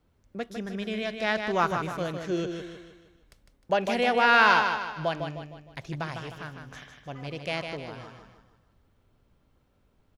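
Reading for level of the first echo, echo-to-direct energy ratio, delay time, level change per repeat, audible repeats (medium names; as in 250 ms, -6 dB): -6.5 dB, -5.5 dB, 154 ms, -7.0 dB, 4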